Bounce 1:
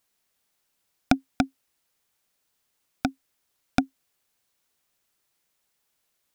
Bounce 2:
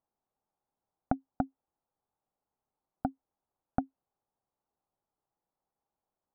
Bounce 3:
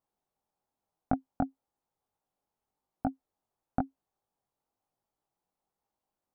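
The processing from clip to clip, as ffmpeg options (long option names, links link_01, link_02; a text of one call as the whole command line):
ffmpeg -i in.wav -af "lowpass=frequency=1100:width=0.5412,lowpass=frequency=1100:width=1.3066,equalizer=frequency=810:width=5.7:gain=7.5,acompressor=threshold=-19dB:ratio=6,volume=-5.5dB" out.wav
ffmpeg -i in.wav -af "flanger=delay=18.5:depth=3.7:speed=1,volume=4dB" out.wav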